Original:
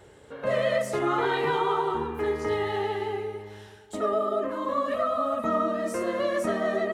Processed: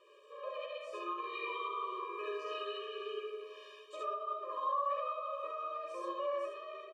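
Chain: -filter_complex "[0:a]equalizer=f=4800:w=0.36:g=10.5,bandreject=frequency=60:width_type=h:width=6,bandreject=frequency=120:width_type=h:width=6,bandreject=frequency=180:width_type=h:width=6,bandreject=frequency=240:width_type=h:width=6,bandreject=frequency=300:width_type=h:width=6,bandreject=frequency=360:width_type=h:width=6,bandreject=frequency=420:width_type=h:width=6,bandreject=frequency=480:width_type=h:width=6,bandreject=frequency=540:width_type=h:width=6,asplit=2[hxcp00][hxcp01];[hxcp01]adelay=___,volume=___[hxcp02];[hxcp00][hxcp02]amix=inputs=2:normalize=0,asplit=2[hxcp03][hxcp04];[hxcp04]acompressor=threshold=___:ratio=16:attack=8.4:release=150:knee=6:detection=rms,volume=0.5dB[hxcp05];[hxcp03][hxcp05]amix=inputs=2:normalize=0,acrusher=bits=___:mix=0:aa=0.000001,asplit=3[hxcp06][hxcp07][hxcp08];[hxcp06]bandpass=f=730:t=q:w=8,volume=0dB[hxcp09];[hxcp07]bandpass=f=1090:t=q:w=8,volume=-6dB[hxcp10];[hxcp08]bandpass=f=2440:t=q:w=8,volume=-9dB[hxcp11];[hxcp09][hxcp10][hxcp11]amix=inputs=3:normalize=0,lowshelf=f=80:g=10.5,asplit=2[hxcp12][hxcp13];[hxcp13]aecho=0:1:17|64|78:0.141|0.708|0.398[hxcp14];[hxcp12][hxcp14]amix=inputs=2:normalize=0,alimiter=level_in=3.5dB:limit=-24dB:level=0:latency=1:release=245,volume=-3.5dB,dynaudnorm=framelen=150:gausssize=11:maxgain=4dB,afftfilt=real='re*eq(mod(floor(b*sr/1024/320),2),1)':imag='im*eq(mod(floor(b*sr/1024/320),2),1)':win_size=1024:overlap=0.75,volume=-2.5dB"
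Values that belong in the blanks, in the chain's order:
14, -9.5dB, -36dB, 7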